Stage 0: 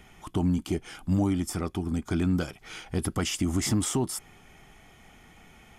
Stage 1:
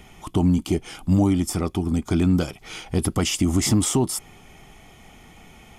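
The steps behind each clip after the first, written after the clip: peaking EQ 1.6 kHz -6.5 dB 0.53 oct; trim +6.5 dB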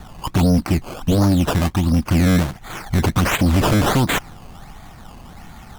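static phaser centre 1.1 kHz, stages 4; decimation with a swept rate 16×, swing 100% 1.4 Hz; sine folder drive 7 dB, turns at -11.5 dBFS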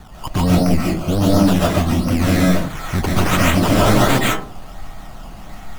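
reverberation RT60 0.40 s, pre-delay 100 ms, DRR -5 dB; trim -2.5 dB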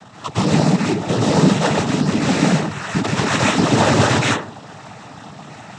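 in parallel at -7.5 dB: integer overflow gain 12.5 dB; on the sum: noise-vocoded speech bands 12

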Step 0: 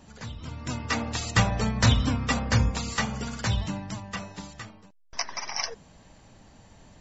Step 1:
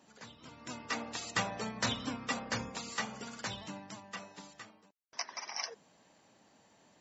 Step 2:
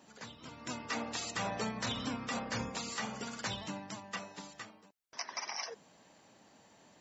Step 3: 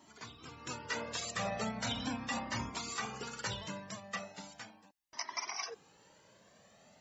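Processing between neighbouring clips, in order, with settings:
high-pass 250 Hz 12 dB/octave; trim -8 dB
peak limiter -29 dBFS, peak gain reduction 10.5 dB; trim +3 dB
Shepard-style flanger rising 0.38 Hz; trim +4 dB

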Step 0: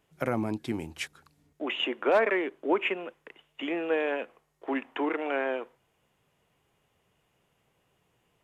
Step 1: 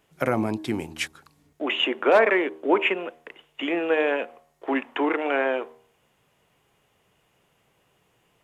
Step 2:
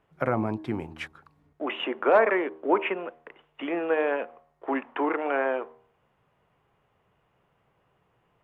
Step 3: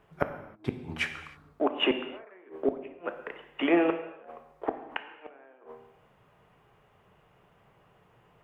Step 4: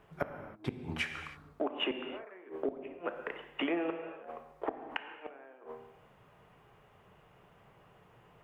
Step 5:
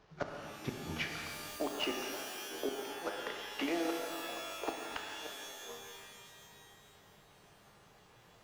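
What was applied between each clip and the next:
bass shelf 210 Hz -3.5 dB; de-hum 78.81 Hz, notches 14; trim +6.5 dB
FFT filter 120 Hz 0 dB, 280 Hz -4 dB, 1.2 kHz 0 dB, 7.1 kHz -20 dB
inverted gate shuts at -20 dBFS, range -36 dB; gated-style reverb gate 340 ms falling, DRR 7 dB; trim +6 dB
compression 4:1, threshold -33 dBFS, peak gain reduction 12.5 dB; trim +1 dB
CVSD coder 32 kbps; pitch-shifted reverb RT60 2.3 s, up +12 st, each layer -2 dB, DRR 5.5 dB; trim -3 dB

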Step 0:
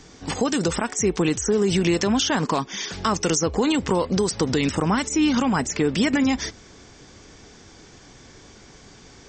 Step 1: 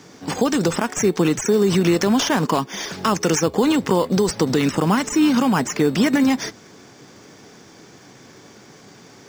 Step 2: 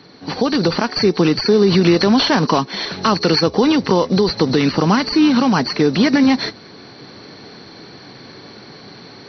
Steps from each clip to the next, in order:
high-pass 120 Hz 24 dB/octave; in parallel at -5.5 dB: sample-and-hold 11×
knee-point frequency compression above 3.9 kHz 4:1; level rider gain up to 6.5 dB

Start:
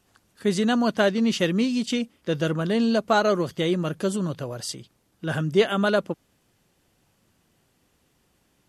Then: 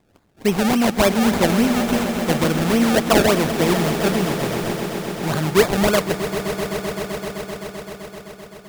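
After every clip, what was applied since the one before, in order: decimation with a swept rate 30×, swing 100% 3.5 Hz; echo with a slow build-up 129 ms, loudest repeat 5, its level -13.5 dB; trim +4 dB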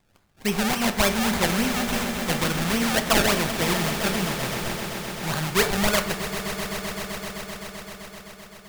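peaking EQ 340 Hz -10.5 dB 2.5 oct; on a send at -8.5 dB: reverberation RT60 0.75 s, pre-delay 4 ms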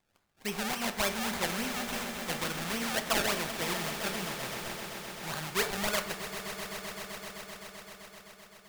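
bass shelf 260 Hz -8 dB; trim -8 dB

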